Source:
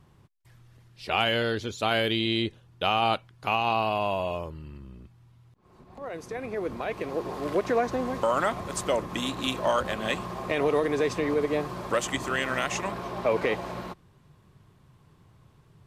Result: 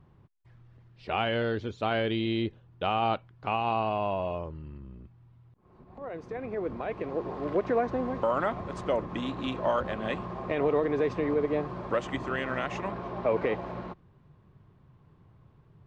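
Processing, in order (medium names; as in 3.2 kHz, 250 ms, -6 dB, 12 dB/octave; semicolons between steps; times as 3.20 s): tape spacing loss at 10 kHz 29 dB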